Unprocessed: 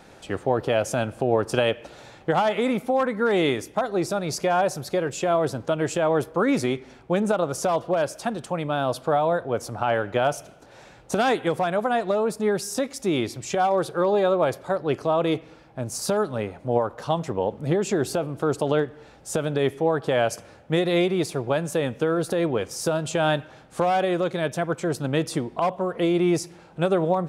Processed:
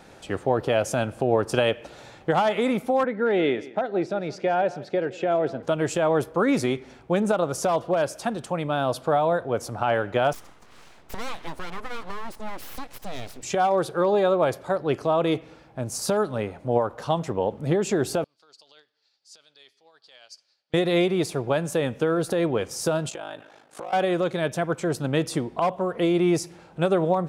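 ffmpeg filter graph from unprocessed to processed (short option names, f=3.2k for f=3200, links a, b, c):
-filter_complex "[0:a]asettb=1/sr,asplit=3[a][b][c];[a]atrim=end=3.044[d];[b]atrim=start=3.04:end=5.63,asetpts=PTS-STARTPTS,afade=t=in:d=0.004:c=qsin,afade=t=out:st=2.586:d=0.004:c=qsin,highpass=190,lowpass=2.7k,equalizer=f=1.1k:w=4:g=-12.5,aecho=1:1:169:0.119,atrim=end_sample=114219[e];[c]atrim=start=5.626[f];[d][e]acrossfade=d=0.004:c1=hsin:c2=qsin[g];[g][f]acrossfade=d=0.004:c1=qsin:c2=hsin,asettb=1/sr,asplit=3[h][i][j];[h]atrim=end=10.334[k];[i]atrim=start=10.33:end=13.43,asetpts=PTS-STARTPTS,afade=t=in:d=0.004:c=qsin,afade=t=out:st=3.096:d=0.004:c=qsin,lowpass=12k,acompressor=threshold=-41dB:ratio=1.5:attack=3.2:release=140:knee=1:detection=peak,aeval=exprs='abs(val(0))':c=same[l];[j]atrim=start=13.426[m];[k][l]acrossfade=d=0.004:c1=hsin:c2=qsin[n];[n][m]acrossfade=d=0.004:c1=qsin:c2=hsin,asettb=1/sr,asplit=3[o][p][q];[o]atrim=end=18.244[r];[p]atrim=start=18.24:end=20.74,asetpts=PTS-STARTPTS,afade=t=in:d=0.004:c=qsin,afade=t=out:st=2.496:d=0.004:c=qsin,tremolo=f=11:d=0.31,bandpass=f=4.6k:t=q:w=6.9[s];[q]atrim=start=20.736[t];[r][s]acrossfade=d=0.004:c1=hsin:c2=qsin[u];[u][t]acrossfade=d=0.004:c1=qsin:c2=hsin,asettb=1/sr,asplit=3[v][w][x];[v]atrim=end=23.094[y];[w]atrim=start=23.09:end=23.93,asetpts=PTS-STARTPTS,afade=t=in:d=0.004:c=qsin,afade=t=out:st=0.836:d=0.004:c=qsin,highpass=300,acompressor=threshold=-30dB:ratio=5:attack=3.2:release=140:knee=1:detection=peak,aeval=exprs='val(0)*sin(2*PI*26*n/s)':c=same[z];[x]atrim=start=23.926[aa];[y][z]acrossfade=d=0.004:c1=hsin:c2=qsin[ab];[ab][aa]acrossfade=d=0.004:c1=qsin:c2=hsin"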